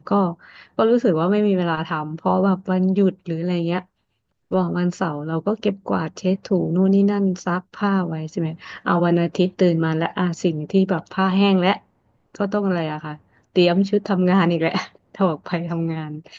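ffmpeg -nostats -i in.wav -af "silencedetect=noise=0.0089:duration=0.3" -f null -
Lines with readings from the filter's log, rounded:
silence_start: 3.83
silence_end: 4.51 | silence_duration: 0.68
silence_start: 11.78
silence_end: 12.35 | silence_duration: 0.56
silence_start: 13.17
silence_end: 13.55 | silence_duration: 0.39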